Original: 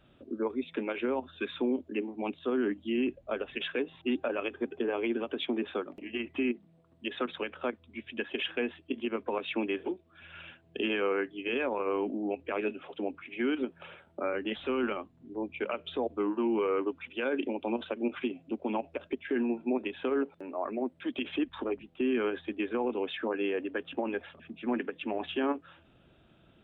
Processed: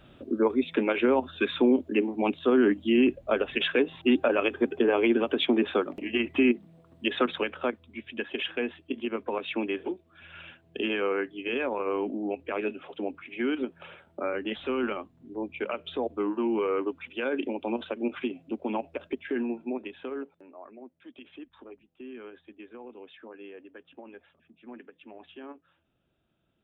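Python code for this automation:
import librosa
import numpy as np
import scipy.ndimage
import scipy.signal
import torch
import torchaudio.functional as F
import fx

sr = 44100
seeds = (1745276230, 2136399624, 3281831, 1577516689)

y = fx.gain(x, sr, db=fx.line((7.18, 8.0), (8.02, 1.5), (19.2, 1.5), (20.24, -7.0), (20.72, -14.0)))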